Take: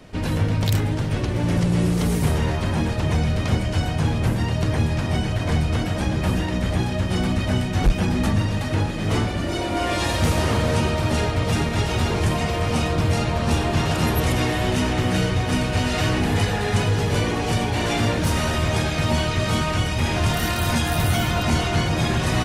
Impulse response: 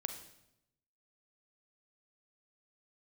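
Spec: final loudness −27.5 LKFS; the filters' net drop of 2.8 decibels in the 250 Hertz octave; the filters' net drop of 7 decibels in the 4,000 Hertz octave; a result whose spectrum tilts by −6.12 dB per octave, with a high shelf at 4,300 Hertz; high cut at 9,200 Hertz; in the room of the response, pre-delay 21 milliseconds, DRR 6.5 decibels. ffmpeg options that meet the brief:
-filter_complex "[0:a]lowpass=9200,equalizer=frequency=250:width_type=o:gain=-4,equalizer=frequency=4000:width_type=o:gain=-5,highshelf=frequency=4300:gain=-8.5,asplit=2[link_01][link_02];[1:a]atrim=start_sample=2205,adelay=21[link_03];[link_02][link_03]afir=irnorm=-1:irlink=0,volume=-6.5dB[link_04];[link_01][link_04]amix=inputs=2:normalize=0,volume=-5dB"

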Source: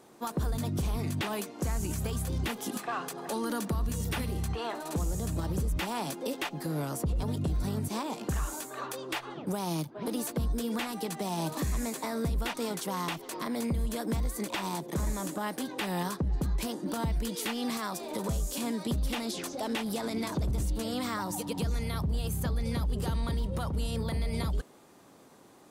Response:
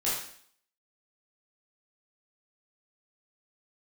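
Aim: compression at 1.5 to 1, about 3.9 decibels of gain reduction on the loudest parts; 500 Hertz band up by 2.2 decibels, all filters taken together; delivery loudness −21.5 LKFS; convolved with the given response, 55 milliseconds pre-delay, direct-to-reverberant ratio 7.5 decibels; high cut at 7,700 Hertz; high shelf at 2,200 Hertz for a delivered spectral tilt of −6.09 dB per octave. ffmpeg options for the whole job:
-filter_complex "[0:a]lowpass=7700,equalizer=frequency=500:width_type=o:gain=3,highshelf=frequency=2200:gain=-4.5,acompressor=threshold=-37dB:ratio=1.5,asplit=2[link_01][link_02];[1:a]atrim=start_sample=2205,adelay=55[link_03];[link_02][link_03]afir=irnorm=-1:irlink=0,volume=-15.5dB[link_04];[link_01][link_04]amix=inputs=2:normalize=0,volume=14dB"

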